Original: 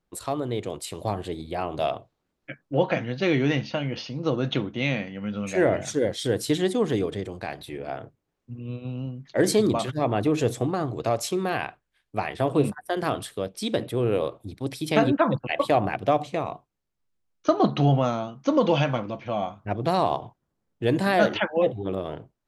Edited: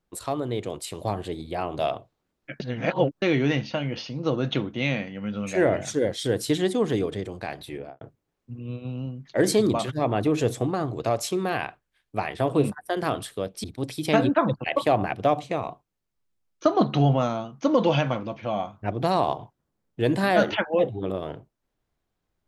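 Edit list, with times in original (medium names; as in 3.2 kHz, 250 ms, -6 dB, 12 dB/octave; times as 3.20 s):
2.60–3.22 s: reverse
7.75–8.01 s: studio fade out
13.64–14.47 s: delete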